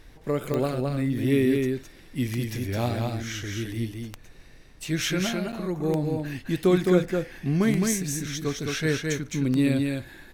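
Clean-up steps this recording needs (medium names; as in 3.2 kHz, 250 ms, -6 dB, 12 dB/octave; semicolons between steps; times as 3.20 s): de-click; interpolate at 5.52 s, 8.3 ms; noise print and reduce 24 dB; inverse comb 213 ms -3.5 dB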